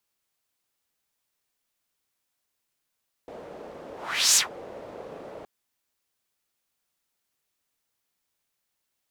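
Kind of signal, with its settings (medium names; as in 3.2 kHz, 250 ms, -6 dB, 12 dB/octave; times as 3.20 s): whoosh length 2.17 s, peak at 1.08 s, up 0.44 s, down 0.14 s, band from 520 Hz, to 7 kHz, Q 2.5, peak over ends 23 dB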